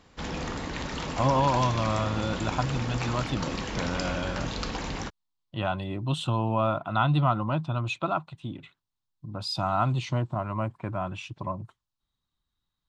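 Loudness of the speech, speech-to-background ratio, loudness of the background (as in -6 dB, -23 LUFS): -29.0 LUFS, 4.5 dB, -33.5 LUFS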